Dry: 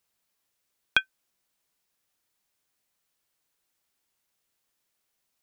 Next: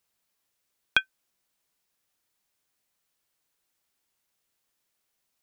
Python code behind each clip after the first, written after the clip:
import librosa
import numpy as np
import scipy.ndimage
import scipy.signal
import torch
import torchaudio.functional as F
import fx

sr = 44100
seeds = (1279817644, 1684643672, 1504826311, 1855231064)

y = x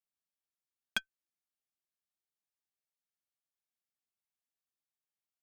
y = fx.notch_comb(x, sr, f0_hz=490.0)
y = fx.cheby_harmonics(y, sr, harmonics=(5, 6, 7), levels_db=(-19, -32, -15), full_scale_db=-7.0)
y = y * librosa.db_to_amplitude(-8.5)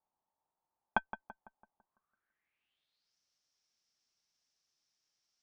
y = fx.echo_filtered(x, sr, ms=167, feedback_pct=47, hz=2000.0, wet_db=-12)
y = fx.filter_sweep_lowpass(y, sr, from_hz=880.0, to_hz=5500.0, start_s=1.83, end_s=3.15, q=6.0)
y = y * librosa.db_to_amplitude(7.0)